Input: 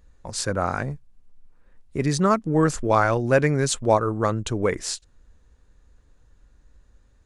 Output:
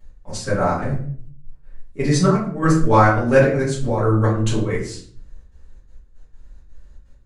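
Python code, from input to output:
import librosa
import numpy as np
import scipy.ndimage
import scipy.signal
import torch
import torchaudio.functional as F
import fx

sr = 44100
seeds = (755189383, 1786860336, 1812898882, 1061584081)

y = fx.step_gate(x, sr, bpm=166, pattern='x..x.xxx.xxx.', floor_db=-12.0, edge_ms=4.5)
y = fx.room_shoebox(y, sr, seeds[0], volume_m3=56.0, walls='mixed', distance_m=2.2)
y = y * librosa.db_to_amplitude(-5.5)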